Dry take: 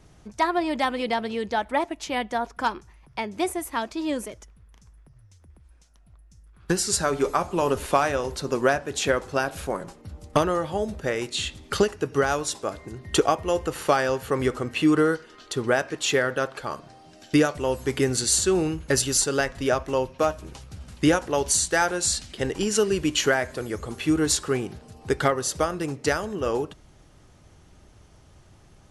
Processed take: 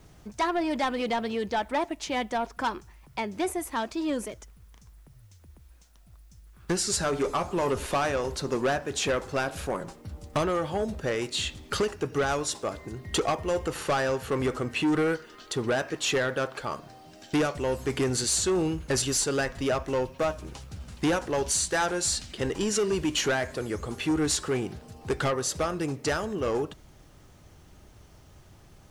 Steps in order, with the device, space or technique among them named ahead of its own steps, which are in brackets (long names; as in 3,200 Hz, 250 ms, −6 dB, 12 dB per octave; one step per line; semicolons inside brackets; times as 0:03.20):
compact cassette (soft clipping −20.5 dBFS, distortion −10 dB; low-pass filter 11,000 Hz 12 dB per octave; tape wow and flutter 25 cents; white noise bed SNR 41 dB)